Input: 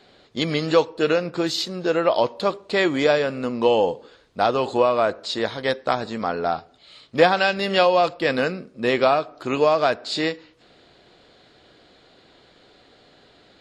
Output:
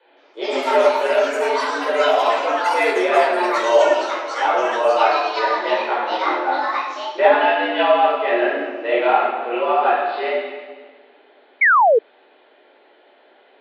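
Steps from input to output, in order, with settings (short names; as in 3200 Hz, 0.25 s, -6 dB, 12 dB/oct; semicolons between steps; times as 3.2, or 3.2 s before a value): mistuned SSB +100 Hz 180–3100 Hz; reverb RT60 1.6 s, pre-delay 14 ms, DRR -7.5 dB; echoes that change speed 0.168 s, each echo +7 st, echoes 3, each echo -6 dB; painted sound fall, 11.61–11.99, 420–2300 Hz -4 dBFS; gain -8.5 dB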